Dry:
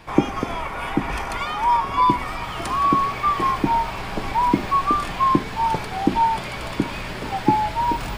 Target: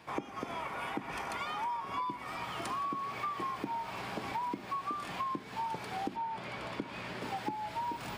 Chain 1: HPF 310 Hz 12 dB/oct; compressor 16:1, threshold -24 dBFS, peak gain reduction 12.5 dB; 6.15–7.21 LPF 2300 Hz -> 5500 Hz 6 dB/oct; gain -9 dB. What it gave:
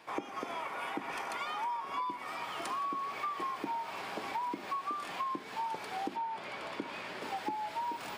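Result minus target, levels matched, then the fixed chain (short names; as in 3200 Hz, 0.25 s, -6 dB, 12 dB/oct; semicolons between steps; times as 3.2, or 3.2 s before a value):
125 Hz band -10.0 dB
HPF 130 Hz 12 dB/oct; compressor 16:1, threshold -24 dBFS, peak gain reduction 15.5 dB; 6.15–7.21 LPF 2300 Hz -> 5500 Hz 6 dB/oct; gain -9 dB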